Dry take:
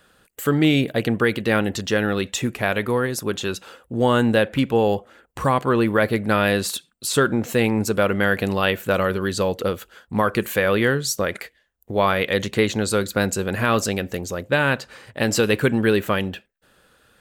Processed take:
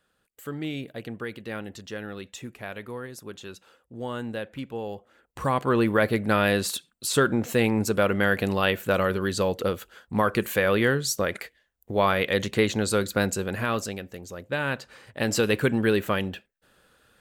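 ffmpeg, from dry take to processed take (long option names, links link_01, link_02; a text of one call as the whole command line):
ffmpeg -i in.wav -af "volume=6dB,afade=type=in:start_time=4.95:duration=0.82:silence=0.251189,afade=type=out:start_time=13.18:duration=0.93:silence=0.316228,afade=type=in:start_time=14.11:duration=1.33:silence=0.354813" out.wav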